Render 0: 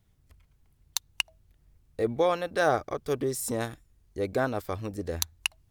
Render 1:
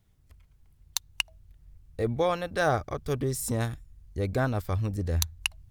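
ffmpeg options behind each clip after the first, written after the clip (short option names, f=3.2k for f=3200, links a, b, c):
-af "asubboost=boost=4.5:cutoff=170"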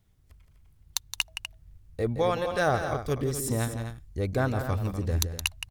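-af "aecho=1:1:169.1|247.8:0.355|0.316"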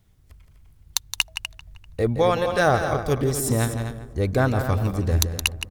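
-filter_complex "[0:a]asplit=2[a][b];[b]adelay=392,lowpass=f=1.5k:p=1,volume=-17dB,asplit=2[c][d];[d]adelay=392,lowpass=f=1.5k:p=1,volume=0.39,asplit=2[e][f];[f]adelay=392,lowpass=f=1.5k:p=1,volume=0.39[g];[a][c][e][g]amix=inputs=4:normalize=0,volume=6dB"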